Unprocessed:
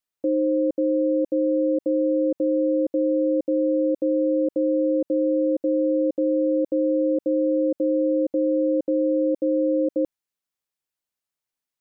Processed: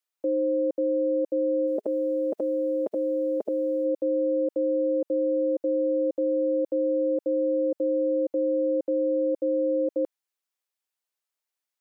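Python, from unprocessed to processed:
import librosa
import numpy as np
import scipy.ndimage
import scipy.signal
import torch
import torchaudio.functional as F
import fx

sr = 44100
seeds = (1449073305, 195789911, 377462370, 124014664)

y = fx.spec_clip(x, sr, under_db=20, at=(1.66, 3.84), fade=0.02)
y = scipy.signal.sosfilt(scipy.signal.butter(2, 420.0, 'highpass', fs=sr, output='sos'), y)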